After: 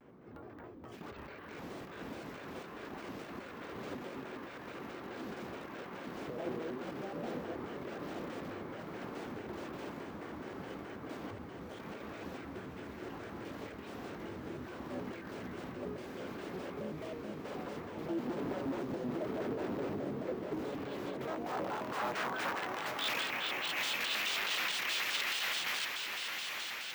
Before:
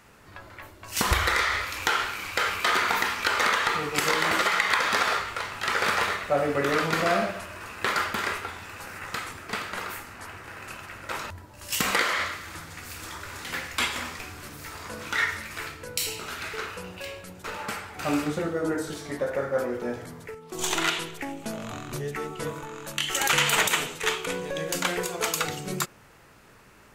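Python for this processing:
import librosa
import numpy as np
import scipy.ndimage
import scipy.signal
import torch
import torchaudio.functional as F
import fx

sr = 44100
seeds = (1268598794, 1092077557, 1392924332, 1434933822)

p1 = fx.dynamic_eq(x, sr, hz=2900.0, q=1.2, threshold_db=-42.0, ratio=4.0, max_db=7)
p2 = fx.over_compress(p1, sr, threshold_db=-30.0, ratio=-1.0)
p3 = (np.mod(10.0 ** (25.0 / 20.0) * p2 + 1.0, 2.0) - 1.0) / 10.0 ** (25.0 / 20.0)
p4 = fx.filter_sweep_bandpass(p3, sr, from_hz=290.0, to_hz=2600.0, start_s=20.56, end_s=23.09, q=1.4)
p5 = p4 + fx.echo_diffused(p4, sr, ms=917, feedback_pct=59, wet_db=-4, dry=0)
p6 = np.repeat(scipy.signal.resample_poly(p5, 1, 2), 2)[:len(p5)]
y = fx.vibrato_shape(p6, sr, shape='square', rate_hz=4.7, depth_cents=250.0)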